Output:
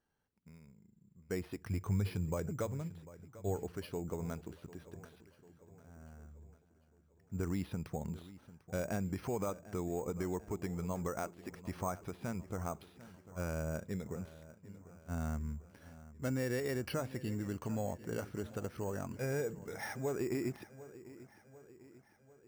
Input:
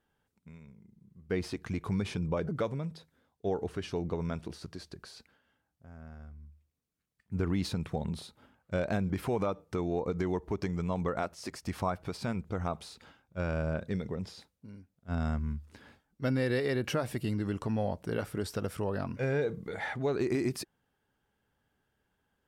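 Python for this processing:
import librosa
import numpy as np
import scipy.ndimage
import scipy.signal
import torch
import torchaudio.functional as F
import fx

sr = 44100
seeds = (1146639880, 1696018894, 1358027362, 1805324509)

y = fx.peak_eq(x, sr, hz=97.0, db=10.0, octaves=0.43, at=(1.6, 3.63))
y = fx.echo_wet_lowpass(y, sr, ms=746, feedback_pct=53, hz=3300.0, wet_db=-17.0)
y = np.repeat(scipy.signal.resample_poly(y, 1, 6), 6)[:len(y)]
y = F.gain(torch.from_numpy(y), -6.0).numpy()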